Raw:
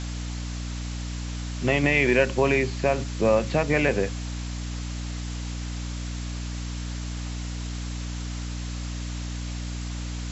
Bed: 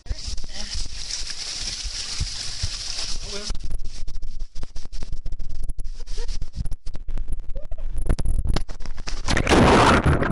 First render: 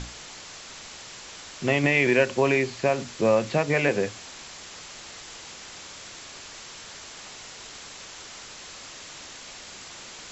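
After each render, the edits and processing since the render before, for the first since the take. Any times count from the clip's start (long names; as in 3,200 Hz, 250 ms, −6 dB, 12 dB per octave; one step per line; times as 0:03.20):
mains-hum notches 60/120/180/240/300 Hz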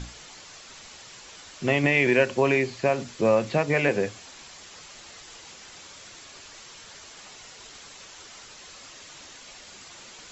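broadband denoise 6 dB, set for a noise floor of −43 dBFS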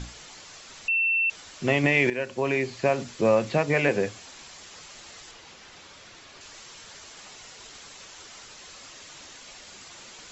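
0:00.88–0:01.30: beep over 2,690 Hz −20.5 dBFS
0:02.10–0:02.84: fade in, from −13 dB
0:05.31–0:06.41: high-frequency loss of the air 88 metres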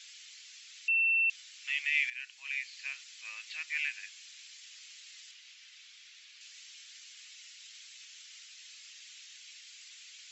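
inverse Chebyshev high-pass filter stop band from 390 Hz, stop band 80 dB
high-shelf EQ 4,200 Hz −8.5 dB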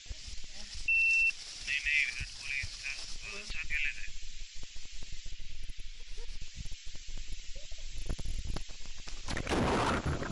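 mix in bed −15.5 dB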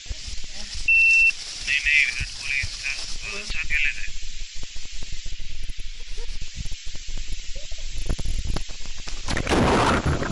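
level +11 dB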